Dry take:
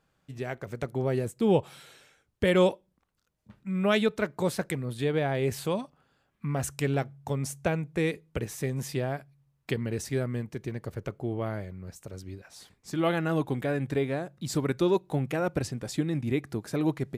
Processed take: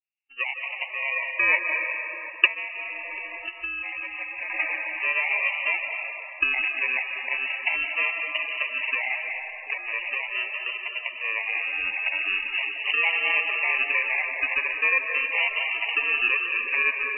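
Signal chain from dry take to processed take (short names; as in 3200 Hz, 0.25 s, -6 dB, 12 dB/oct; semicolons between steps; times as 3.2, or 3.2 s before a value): recorder AGC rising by 32 dB/s; spectral noise reduction 29 dB; sample-and-hold 33×; inverted band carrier 2800 Hz; vibrato 0.4 Hz 65 cents; tape echo 0.741 s, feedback 46%, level -14 dB, low-pass 1100 Hz; digital reverb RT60 3.5 s, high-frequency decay 0.5×, pre-delay 0.12 s, DRR 2 dB; loudest bins only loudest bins 64; 2.46–4.5 compressor 10:1, threshold -31 dBFS, peak gain reduction 15.5 dB; gain +1 dB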